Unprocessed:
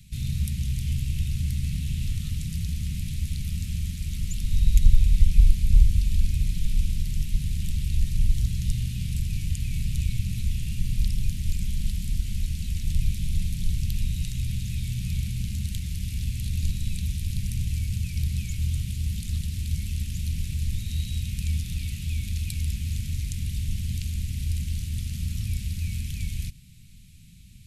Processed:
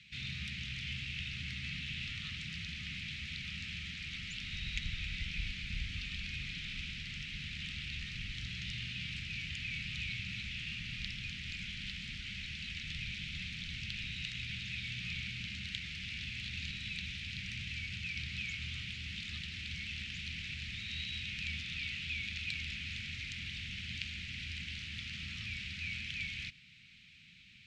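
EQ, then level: band-pass 2200 Hz, Q 1.2; air absorption 160 m; +10.5 dB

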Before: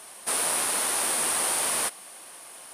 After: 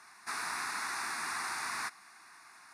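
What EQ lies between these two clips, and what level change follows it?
air absorption 240 m; tilt shelf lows -9.5 dB, about 1400 Hz; fixed phaser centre 1300 Hz, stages 4; 0.0 dB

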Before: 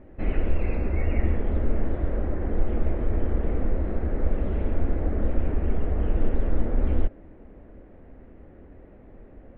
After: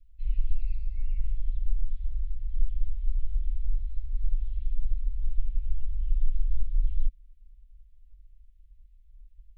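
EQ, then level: inverse Chebyshev band-stop 170–1100 Hz, stop band 70 dB; 0.0 dB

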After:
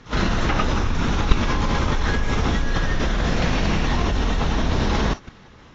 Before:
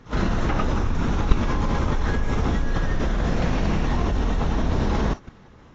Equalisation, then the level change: LPF 5600 Hz 12 dB/oct; high shelf 2000 Hz +11 dB; +1.0 dB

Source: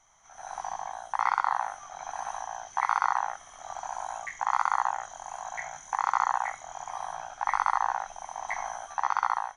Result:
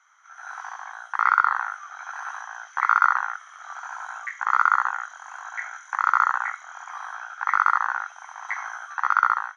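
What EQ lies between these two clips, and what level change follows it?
resonant high-pass 1400 Hz, resonance Q 5.8; air absorption 74 m; 0.0 dB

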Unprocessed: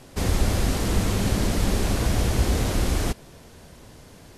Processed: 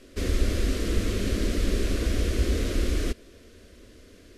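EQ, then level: high shelf 5600 Hz -10.5 dB; fixed phaser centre 350 Hz, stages 4; 0.0 dB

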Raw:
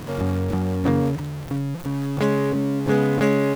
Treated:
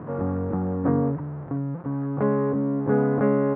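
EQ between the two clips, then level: HPF 110 Hz; LPF 1400 Hz 24 dB/oct; -1.5 dB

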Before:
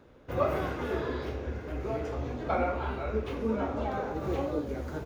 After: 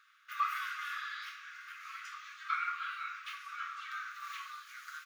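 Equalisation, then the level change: brick-wall FIR high-pass 1100 Hz; +2.5 dB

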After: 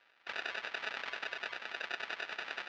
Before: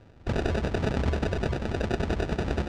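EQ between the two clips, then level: Butterworth band-pass 4400 Hz, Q 0.52; air absorption 210 m; +4.0 dB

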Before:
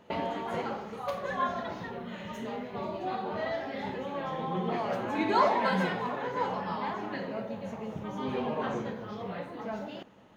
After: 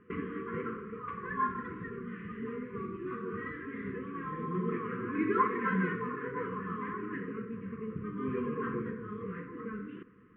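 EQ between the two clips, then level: brick-wall FIR band-stop 500–1000 Hz; inverse Chebyshev low-pass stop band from 4200 Hz, stop band 40 dB; air absorption 99 m; 0.0 dB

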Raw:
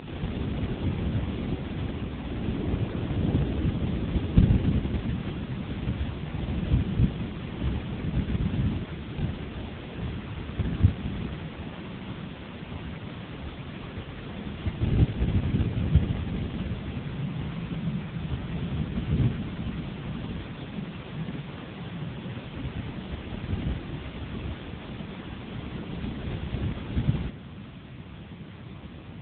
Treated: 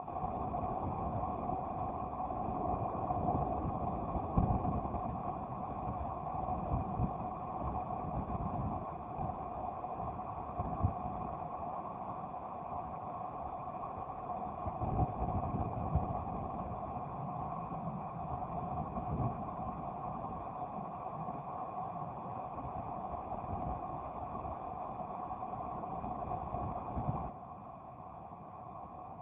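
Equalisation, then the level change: vocal tract filter a; +15.0 dB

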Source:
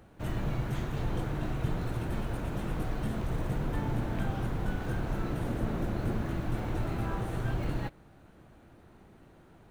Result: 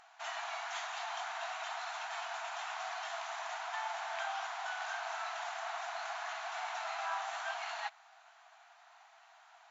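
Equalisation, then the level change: brick-wall FIR band-pass 640–7500 Hz; high shelf 4800 Hz +7.5 dB; +3.5 dB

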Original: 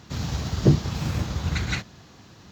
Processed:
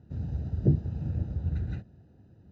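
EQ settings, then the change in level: running mean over 40 samples; bell 82 Hz +5.5 dB 1.3 oct; -7.5 dB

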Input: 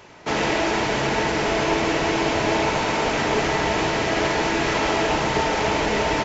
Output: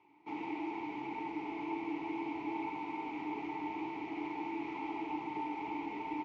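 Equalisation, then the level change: vowel filter u; bell 230 Hz -8 dB 0.37 oct; high shelf 5500 Hz -8.5 dB; -6.5 dB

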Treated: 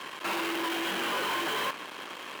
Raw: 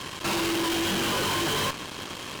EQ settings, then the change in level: three-band isolator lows -16 dB, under 160 Hz, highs -21 dB, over 2600 Hz; RIAA curve recording; bell 85 Hz +8 dB 0.25 oct; -1.5 dB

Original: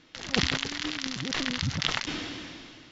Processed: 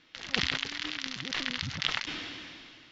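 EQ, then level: air absorption 51 m; bell 2800 Hz +8.5 dB 2.9 oct; -8.5 dB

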